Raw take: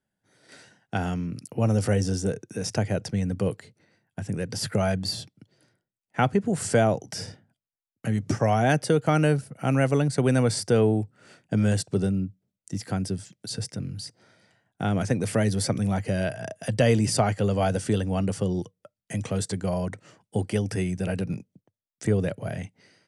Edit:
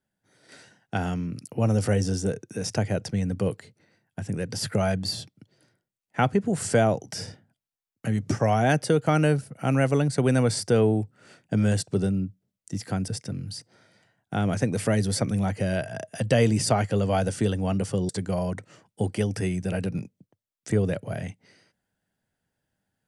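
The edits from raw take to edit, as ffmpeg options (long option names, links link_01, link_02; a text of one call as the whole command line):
ffmpeg -i in.wav -filter_complex "[0:a]asplit=3[link_01][link_02][link_03];[link_01]atrim=end=13.082[link_04];[link_02]atrim=start=13.558:end=18.572[link_05];[link_03]atrim=start=19.438[link_06];[link_04][link_05]acrossfade=duration=0.004:curve1=hsin:curve2=hsin[link_07];[link_07][link_06]acrossfade=duration=0.004:curve1=hsin:curve2=hsin" out.wav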